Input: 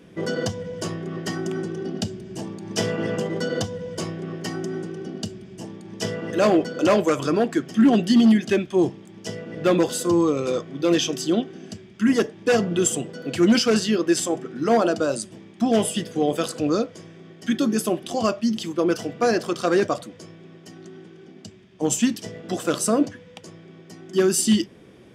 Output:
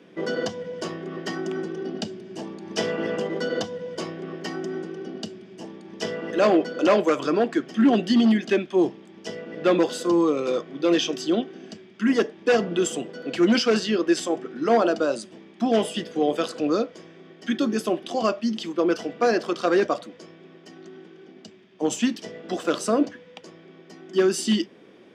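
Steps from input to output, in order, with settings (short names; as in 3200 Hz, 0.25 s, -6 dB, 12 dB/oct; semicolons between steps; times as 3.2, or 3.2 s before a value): three-band isolator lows -22 dB, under 190 Hz, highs -14 dB, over 5700 Hz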